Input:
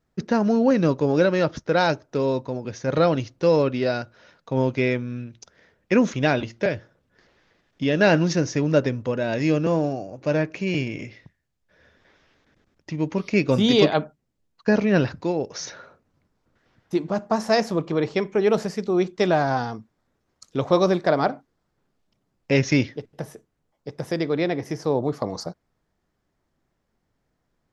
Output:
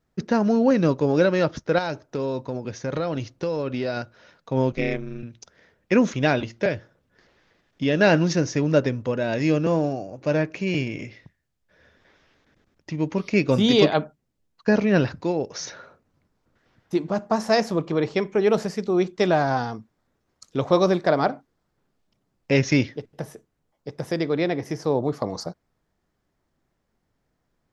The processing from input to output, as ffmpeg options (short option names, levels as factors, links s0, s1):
-filter_complex "[0:a]asettb=1/sr,asplit=3[s0][s1][s2];[s0]atrim=end=1.784[s3];[s1]atrim=start=1.78:end=3.97,asetpts=PTS-STARTPTS,afade=t=in:d=0.004:c=qsin,afade=t=out:st=2.186:d=0.004:c=qsin,acompressor=threshold=0.0794:ratio=6:attack=3.2:release=140:knee=1:detection=peak[s4];[s2]atrim=start=3.966[s5];[s3][s4]acrossfade=d=0.004:c1=hsin:c2=qsin[s6];[s6][s5]acrossfade=d=0.004:c1=qsin:c2=hsin,asettb=1/sr,asplit=3[s7][s8][s9];[s7]atrim=end=4.724[s10];[s8]atrim=start=4.72:end=5.23,asetpts=PTS-STARTPTS,afade=t=in:d=0.004:c=qsin,afade=t=out:st=0.506:d=0.004:c=qsin,aeval=exprs='val(0)*sin(2*PI*110*n/s)':c=same[s11];[s9]atrim=start=5.226[s12];[s10][s11]acrossfade=d=0.004:c1=hsin:c2=qsin[s13];[s13][s12]acrossfade=d=0.004:c1=qsin:c2=hsin"